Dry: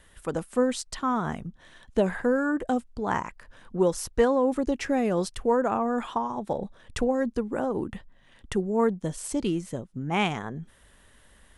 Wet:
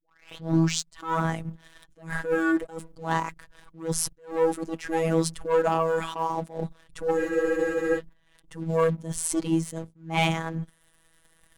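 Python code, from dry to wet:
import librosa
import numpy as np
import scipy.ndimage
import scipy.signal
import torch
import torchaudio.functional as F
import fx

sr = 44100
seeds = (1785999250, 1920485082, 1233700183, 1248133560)

y = fx.tape_start_head(x, sr, length_s=0.96)
y = fx.high_shelf(y, sr, hz=9400.0, db=7.5)
y = fx.hum_notches(y, sr, base_hz=60, count=4)
y = fx.leveller(y, sr, passes=2)
y = fx.robotise(y, sr, hz=163.0)
y = fx.spec_freeze(y, sr, seeds[0], at_s=7.19, hold_s=0.78)
y = fx.attack_slew(y, sr, db_per_s=160.0)
y = y * librosa.db_to_amplitude(-1.0)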